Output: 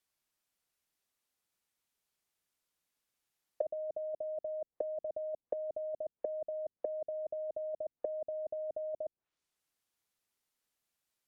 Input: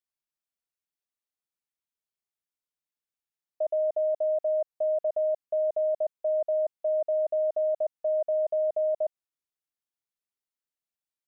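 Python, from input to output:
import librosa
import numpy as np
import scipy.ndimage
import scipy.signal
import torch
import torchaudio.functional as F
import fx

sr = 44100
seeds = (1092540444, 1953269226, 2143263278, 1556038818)

y = fx.over_compress(x, sr, threshold_db=-31.0, ratio=-1.0)
y = fx.env_lowpass_down(y, sr, base_hz=360.0, full_db=-32.5)
y = y * 10.0 ** (3.0 / 20.0)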